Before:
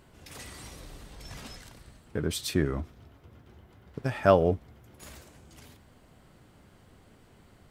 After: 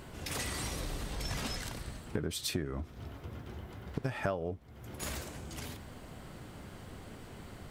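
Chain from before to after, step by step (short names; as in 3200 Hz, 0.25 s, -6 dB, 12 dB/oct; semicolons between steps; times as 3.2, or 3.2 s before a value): compressor 8:1, threshold -41 dBFS, peak gain reduction 25.5 dB; gain +9 dB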